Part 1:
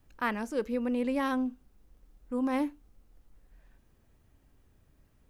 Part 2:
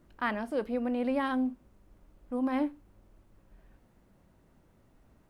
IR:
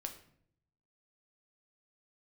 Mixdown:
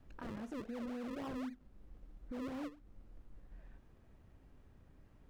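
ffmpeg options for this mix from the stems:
-filter_complex "[0:a]acompressor=threshold=-34dB:ratio=6,volume=2dB[a];[1:a]acrusher=samples=40:mix=1:aa=0.000001:lfo=1:lforange=40:lforate=3.8,volume=-9dB,asplit=2[b][c];[c]apad=whole_len=233383[d];[a][d]sidechaincompress=threshold=-49dB:ratio=8:attack=37:release=322[e];[e][b]amix=inputs=2:normalize=0,lowpass=f=2.2k:p=1,alimiter=level_in=12.5dB:limit=-24dB:level=0:latency=1:release=24,volume=-12.5dB"

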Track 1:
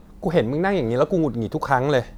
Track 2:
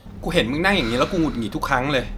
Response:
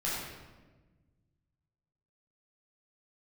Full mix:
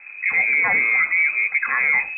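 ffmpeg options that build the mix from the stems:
-filter_complex "[0:a]equalizer=f=460:t=o:w=0.75:g=10,volume=0dB[a];[1:a]volume=-2.5dB[b];[a][b]amix=inputs=2:normalize=0,lowpass=f=2.2k:t=q:w=0.5098,lowpass=f=2.2k:t=q:w=0.6013,lowpass=f=2.2k:t=q:w=0.9,lowpass=f=2.2k:t=q:w=2.563,afreqshift=-2600,alimiter=limit=-11dB:level=0:latency=1:release=18"

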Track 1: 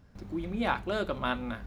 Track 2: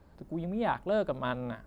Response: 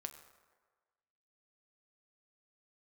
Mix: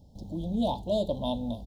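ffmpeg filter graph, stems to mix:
-filter_complex "[0:a]equalizer=f=390:t=o:w=0.58:g=-5,volume=2.5dB[a];[1:a]adelay=0.8,volume=-5.5dB[b];[a][b]amix=inputs=2:normalize=0,asuperstop=centerf=1700:order=12:qfactor=0.72"

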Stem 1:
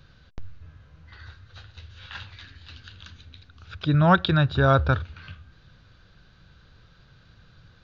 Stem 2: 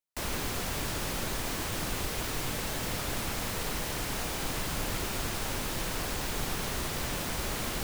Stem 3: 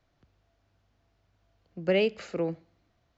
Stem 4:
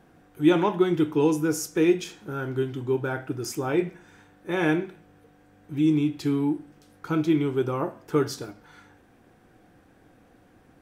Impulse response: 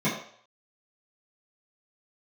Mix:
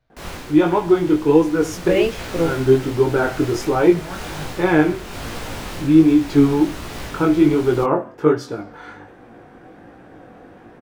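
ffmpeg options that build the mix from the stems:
-filter_complex "[0:a]volume=-19dB[a];[1:a]volume=-1dB[b];[2:a]volume=2.5dB,asplit=2[c][d];[3:a]equalizer=f=640:w=0.3:g=8,adelay=100,volume=2dB[e];[d]apad=whole_len=481156[f];[e][f]sidechaincompress=threshold=-31dB:ratio=8:attack=16:release=304[g];[a][b][c][g]amix=inputs=4:normalize=0,highshelf=f=6.2k:g=-9.5,dynaudnorm=f=140:g=3:m=9dB,flanger=delay=16.5:depth=6.6:speed=1.3"

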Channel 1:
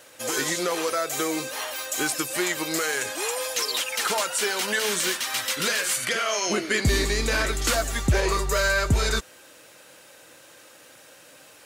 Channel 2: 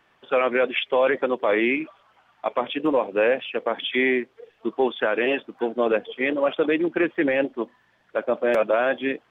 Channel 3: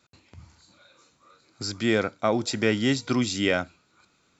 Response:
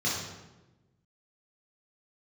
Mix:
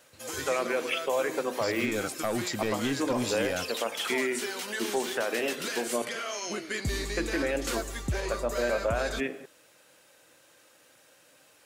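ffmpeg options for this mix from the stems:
-filter_complex "[0:a]volume=-9.5dB[a];[1:a]bandreject=f=50:t=h:w=6,bandreject=f=100:t=h:w=6,bandreject=f=150:t=h:w=6,bandreject=f=200:t=h:w=6,bandreject=f=250:t=h:w=6,bandreject=f=300:t=h:w=6,bandreject=f=350:t=h:w=6,adelay=150,volume=-4.5dB,asplit=3[b][c][d];[b]atrim=end=6.02,asetpts=PTS-STARTPTS,afade=t=out:st=6.016:d=0.004:c=hsin[e];[c]atrim=start=6.02:end=7.17,asetpts=PTS-STARTPTS,volume=0[f];[d]atrim=start=7.17,asetpts=PTS-STARTPTS,afade=t=in:d=0.004:c=hsin[g];[e][f][g]concat=n=3:v=0:a=1,asplit=2[h][i];[i]volume=-20.5dB[j];[2:a]aeval=exprs='clip(val(0),-1,0.0891)':c=same,volume=-2.5dB[k];[3:a]atrim=start_sample=2205[l];[j][l]afir=irnorm=-1:irlink=0[m];[a][h][k][m]amix=inputs=4:normalize=0,alimiter=limit=-18.5dB:level=0:latency=1:release=210"

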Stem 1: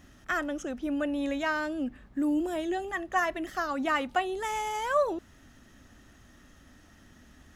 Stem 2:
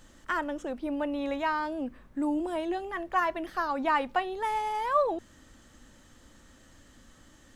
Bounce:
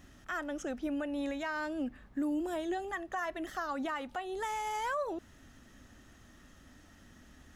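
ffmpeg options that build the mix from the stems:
-filter_complex "[0:a]volume=-2dB[a];[1:a]volume=-1,volume=-13.5dB[b];[a][b]amix=inputs=2:normalize=0,alimiter=level_in=3dB:limit=-24dB:level=0:latency=1:release=233,volume=-3dB"

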